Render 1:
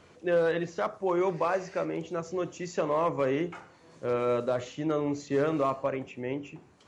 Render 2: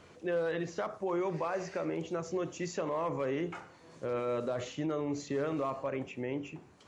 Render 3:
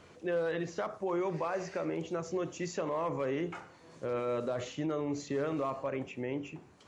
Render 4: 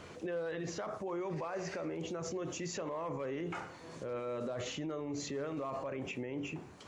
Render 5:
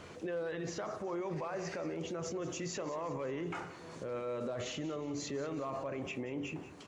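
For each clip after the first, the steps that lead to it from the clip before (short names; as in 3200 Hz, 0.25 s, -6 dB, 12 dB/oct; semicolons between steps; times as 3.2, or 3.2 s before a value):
limiter -25.5 dBFS, peak gain reduction 7.5 dB
nothing audible
limiter -37.5 dBFS, peak gain reduction 12 dB; gain +6 dB
feedback echo 0.183 s, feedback 51%, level -15 dB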